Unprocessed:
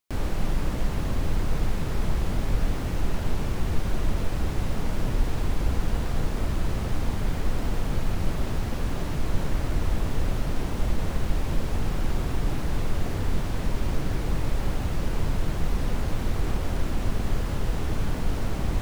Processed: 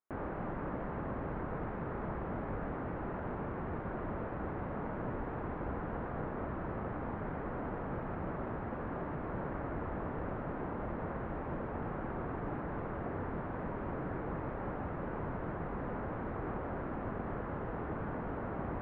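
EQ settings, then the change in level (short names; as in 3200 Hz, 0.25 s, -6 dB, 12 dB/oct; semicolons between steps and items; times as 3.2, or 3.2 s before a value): HPF 340 Hz 6 dB/oct; LPF 1600 Hz 24 dB/oct; -2.0 dB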